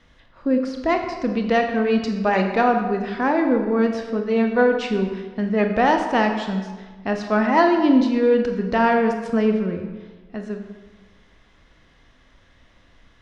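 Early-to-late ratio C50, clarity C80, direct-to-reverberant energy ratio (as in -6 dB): 6.0 dB, 7.5 dB, 4.0 dB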